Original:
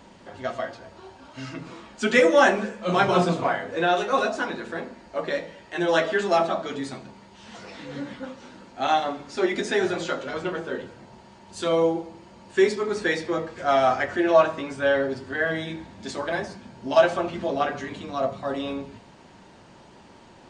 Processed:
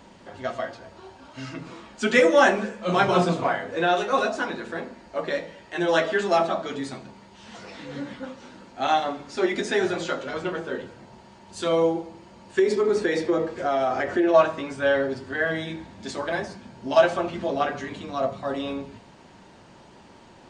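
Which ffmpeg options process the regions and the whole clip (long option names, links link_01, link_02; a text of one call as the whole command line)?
ffmpeg -i in.wav -filter_complex "[0:a]asettb=1/sr,asplit=3[link_01][link_02][link_03];[link_01]atrim=end=12.594[link_04];[link_02]atrim=start=12.59:end=14.34,asetpts=PTS-STARTPTS,afade=type=in:duration=0.004:curve=qsin,afade=type=out:start_time=1.746:duration=0.004:curve=qsin,acompressor=threshold=-23dB:ratio=6:attack=3.2:release=140:knee=1:detection=peak,equalizer=frequency=390:width_type=o:width=1.6:gain=7.5,asoftclip=type=hard:threshold=-12dB[link_05];[link_03]atrim=start=14.336[link_06];[link_04][link_05]acrossfade=duration=0.004:curve1=hsin:curve2=qsin[link_07];[link_07][link_06]acrossfade=duration=0.004:curve1=qsin:curve2=hsin" out.wav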